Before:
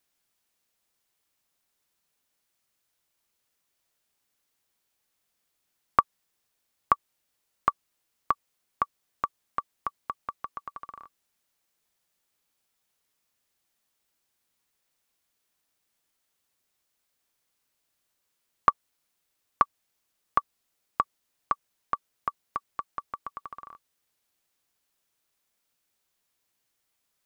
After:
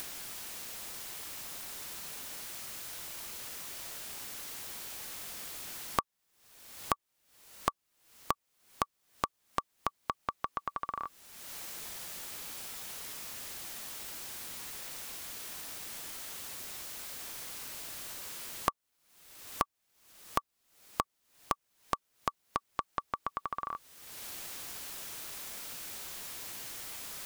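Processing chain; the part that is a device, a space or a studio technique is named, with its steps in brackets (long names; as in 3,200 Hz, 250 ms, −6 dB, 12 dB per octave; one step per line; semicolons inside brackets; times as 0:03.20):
upward and downward compression (upward compression, threshold −35 dBFS; downward compressor 4 to 1, threshold −44 dBFS, peak gain reduction 24.5 dB)
level +11.5 dB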